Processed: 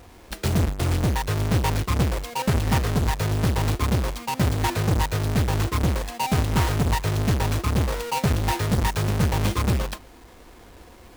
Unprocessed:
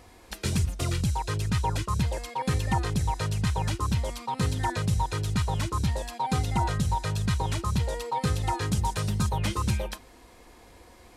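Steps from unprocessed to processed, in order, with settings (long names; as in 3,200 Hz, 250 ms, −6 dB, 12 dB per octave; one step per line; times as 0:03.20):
each half-wave held at its own peak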